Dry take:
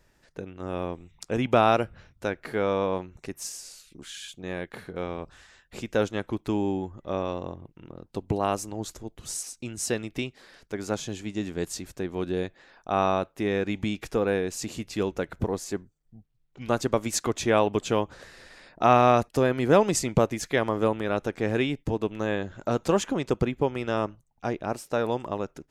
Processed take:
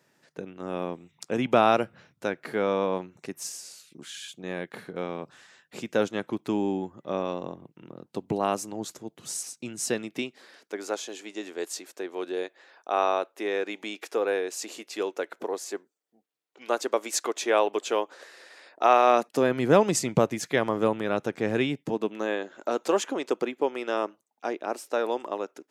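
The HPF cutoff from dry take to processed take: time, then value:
HPF 24 dB/oct
9.92 s 140 Hz
10.95 s 350 Hz
19.04 s 350 Hz
19.58 s 120 Hz
21.65 s 120 Hz
22.39 s 290 Hz

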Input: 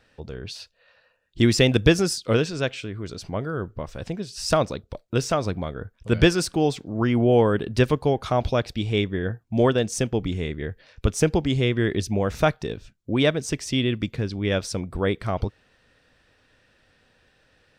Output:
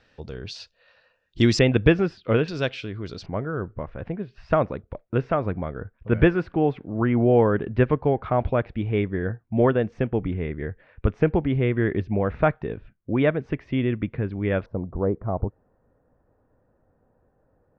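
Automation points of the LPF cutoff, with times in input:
LPF 24 dB/oct
6300 Hz
from 1.59 s 2700 Hz
from 2.48 s 5000 Hz
from 3.26 s 2200 Hz
from 14.66 s 1000 Hz

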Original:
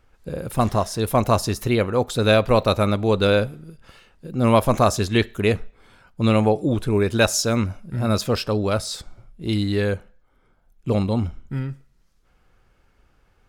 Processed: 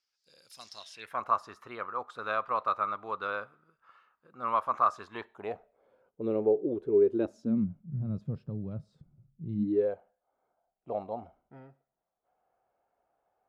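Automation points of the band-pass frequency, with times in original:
band-pass, Q 5.4
0.73 s 5100 Hz
1.22 s 1200 Hz
4.97 s 1200 Hz
6.27 s 400 Hz
7.08 s 400 Hz
7.81 s 150 Hz
9.53 s 150 Hz
9.93 s 700 Hz

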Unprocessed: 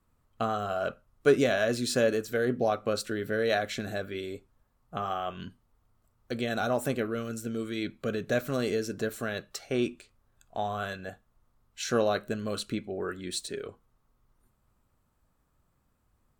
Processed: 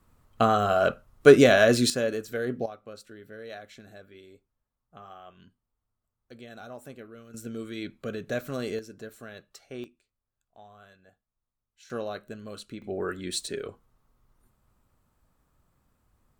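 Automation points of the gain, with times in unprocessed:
+8 dB
from 1.9 s -2.5 dB
from 2.66 s -14.5 dB
from 7.34 s -3 dB
from 8.79 s -10.5 dB
from 9.84 s -19.5 dB
from 11.9 s -8 dB
from 12.82 s +2.5 dB

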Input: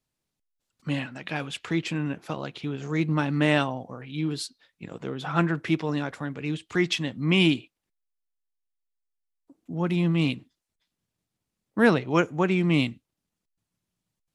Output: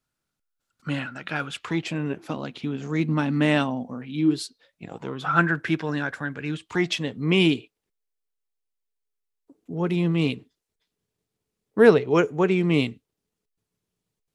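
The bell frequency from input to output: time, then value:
bell +13.5 dB 0.27 oct
1.54 s 1400 Hz
2.37 s 240 Hz
4.11 s 240 Hz
5.43 s 1600 Hz
6.48 s 1600 Hz
7.09 s 430 Hz

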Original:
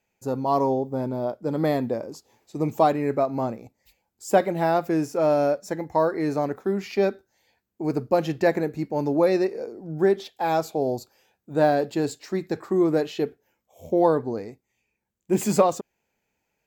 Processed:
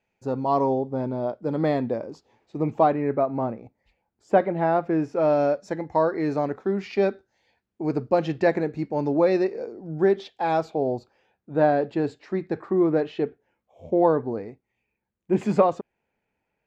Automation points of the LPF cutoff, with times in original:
1.92 s 3900 Hz
3.08 s 2100 Hz
4.92 s 2100 Hz
5.42 s 4300 Hz
10.45 s 4300 Hz
10.86 s 2500 Hz

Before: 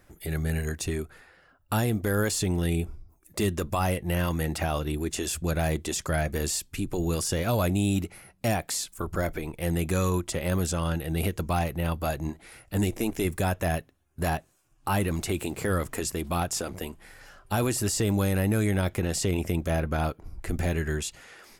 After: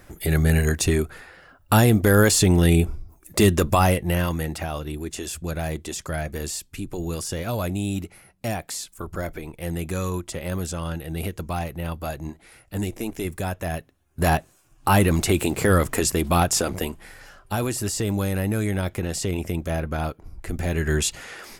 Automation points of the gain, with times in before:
3.71 s +9.5 dB
4.65 s -1.5 dB
13.7 s -1.5 dB
14.35 s +8.5 dB
16.77 s +8.5 dB
17.61 s +0.5 dB
20.62 s +0.5 dB
21.07 s +10 dB

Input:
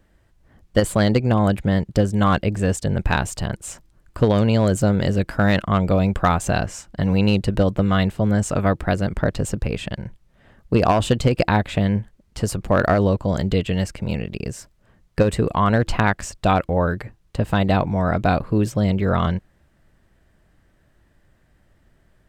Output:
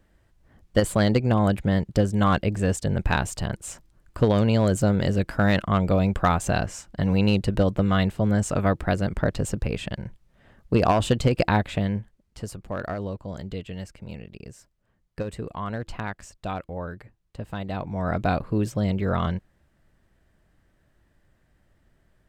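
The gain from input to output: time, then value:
11.58 s -3 dB
12.65 s -13.5 dB
17.7 s -13.5 dB
18.12 s -5 dB

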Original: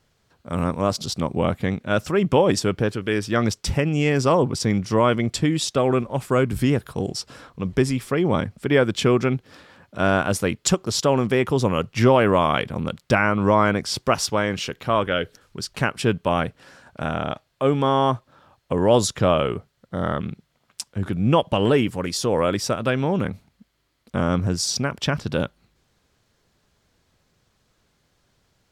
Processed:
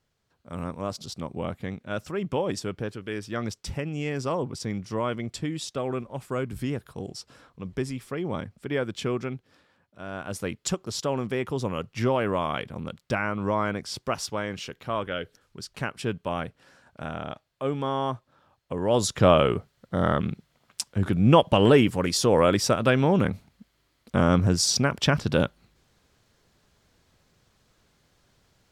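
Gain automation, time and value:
9.17 s -10 dB
10.05 s -19 dB
10.42 s -8.5 dB
18.82 s -8.5 dB
19.26 s +1 dB

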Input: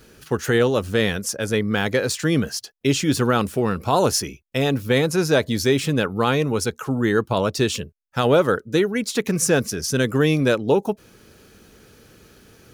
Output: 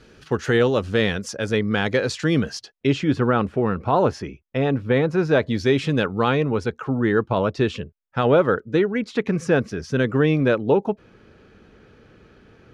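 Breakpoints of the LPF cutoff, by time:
2.57 s 4800 Hz
3.17 s 2000 Hz
5.12 s 2000 Hz
6.09 s 5100 Hz
6.45 s 2500 Hz

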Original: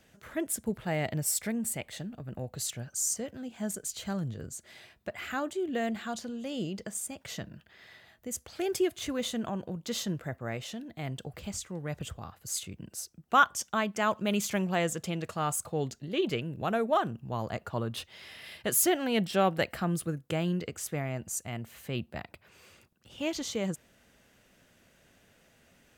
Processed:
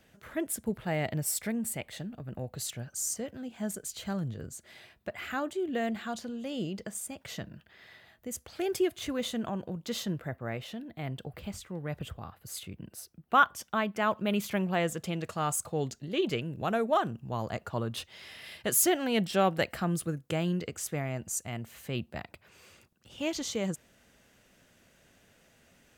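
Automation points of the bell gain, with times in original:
bell 6800 Hz 0.97 oct
9.91 s -3.5 dB
10.45 s -10.5 dB
14.6 s -10.5 dB
15.38 s +1.5 dB

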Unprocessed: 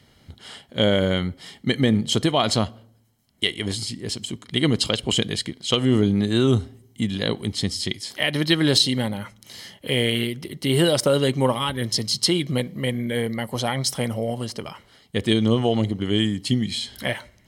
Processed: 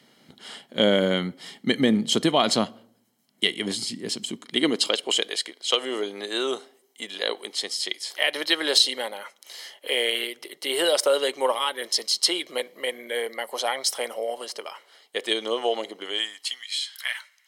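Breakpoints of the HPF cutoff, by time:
HPF 24 dB/oct
4.22 s 180 Hz
5.29 s 440 Hz
16.01 s 440 Hz
16.66 s 1200 Hz

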